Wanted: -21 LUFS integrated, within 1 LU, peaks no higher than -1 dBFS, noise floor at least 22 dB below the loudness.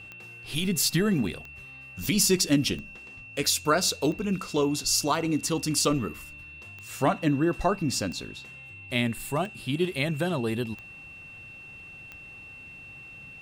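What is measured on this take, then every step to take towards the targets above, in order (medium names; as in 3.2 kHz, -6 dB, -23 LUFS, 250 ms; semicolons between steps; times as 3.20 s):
clicks found 10; steady tone 2.7 kHz; tone level -43 dBFS; loudness -26.5 LUFS; peak level -10.5 dBFS; loudness target -21.0 LUFS
-> de-click; band-stop 2.7 kHz, Q 30; trim +5.5 dB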